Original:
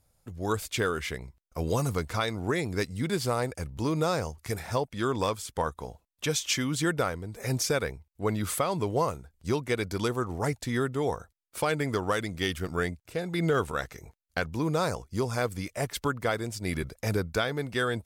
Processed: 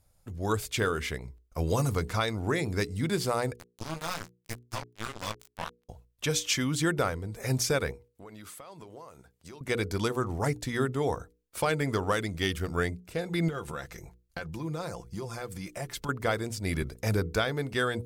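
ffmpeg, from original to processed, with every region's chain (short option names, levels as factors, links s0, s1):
-filter_complex "[0:a]asettb=1/sr,asplit=3[s0][s1][s2];[s0]atrim=end=3.564[s3];[s1]atrim=start=3.56:end=5.89,asetpts=PTS-STARTPTS,afade=t=in:d=0.004:c=qsin,afade=t=out:st=2.326:d=0.004:c=qsin,equalizer=f=400:t=o:w=1.4:g=-12.5,flanger=delay=17:depth=2.3:speed=1.9,acrusher=bits=4:mix=0:aa=0.5[s4];[s2]atrim=start=5.886[s5];[s3][s4]acrossfade=d=0.004:c1=hsin:c2=qsin[s6];[s6][s5]acrossfade=d=0.004:c1=qsin:c2=hsin,asettb=1/sr,asplit=3[s7][s8][s9];[s7]atrim=end=7.914[s10];[s8]atrim=start=7.91:end=9.61,asetpts=PTS-STARTPTS,afade=t=in:d=0.004:c=qsin,afade=t=out:st=1.696:d=0.004:c=qsin,highpass=f=370:p=1,acompressor=threshold=0.00631:ratio=6:attack=3.2:release=140:knee=1:detection=peak[s11];[s9]atrim=start=9.606[s12];[s10][s11]acrossfade=d=0.004:c1=hsin:c2=qsin[s13];[s13][s12]acrossfade=d=0.004:c1=qsin:c2=hsin,asettb=1/sr,asplit=3[s14][s15][s16];[s14]atrim=end=13.484[s17];[s15]atrim=start=13.48:end=16.09,asetpts=PTS-STARTPTS,afade=t=in:d=0.004:c=qsin,afade=t=out:st=2.606:d=0.004:c=qsin,acompressor=threshold=0.02:ratio=4:attack=3.2:release=140:knee=1:detection=peak,aecho=1:1:5.8:0.46,atrim=end_sample=115101[s18];[s16]atrim=start=16.086[s19];[s17][s18]acrossfade=d=0.004:c1=hsin:c2=qsin[s20];[s20][s19]acrossfade=d=0.004:c1=qsin:c2=hsin,lowshelf=f=85:g=6,bandreject=f=60:t=h:w=6,bandreject=f=120:t=h:w=6,bandreject=f=180:t=h:w=6,bandreject=f=240:t=h:w=6,bandreject=f=300:t=h:w=6,bandreject=f=360:t=h:w=6,bandreject=f=420:t=h:w=6,bandreject=f=480:t=h:w=6"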